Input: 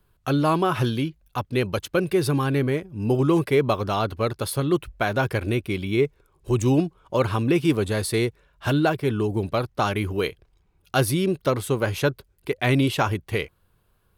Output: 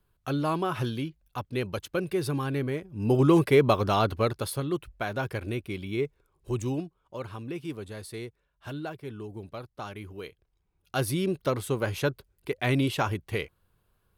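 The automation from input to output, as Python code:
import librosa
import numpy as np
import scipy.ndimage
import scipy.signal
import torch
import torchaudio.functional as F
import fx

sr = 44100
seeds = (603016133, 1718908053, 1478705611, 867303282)

y = fx.gain(x, sr, db=fx.line((2.75, -7.0), (3.24, 0.0), (4.14, 0.0), (4.71, -8.0), (6.56, -8.0), (6.99, -15.5), (10.28, -15.5), (11.19, -5.0)))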